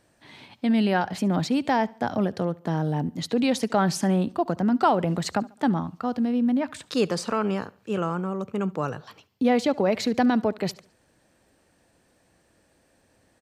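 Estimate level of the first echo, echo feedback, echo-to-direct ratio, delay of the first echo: -22.5 dB, 40%, -22.0 dB, 71 ms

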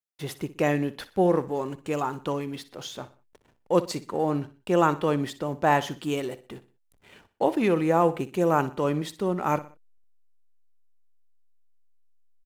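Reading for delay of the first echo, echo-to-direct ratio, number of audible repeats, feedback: 61 ms, -15.5 dB, 3, 39%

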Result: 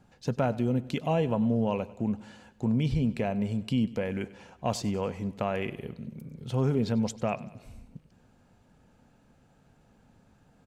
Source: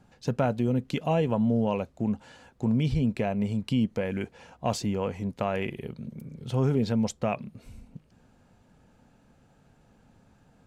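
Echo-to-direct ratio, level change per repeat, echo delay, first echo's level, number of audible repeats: -17.5 dB, -5.0 dB, 96 ms, -19.0 dB, 4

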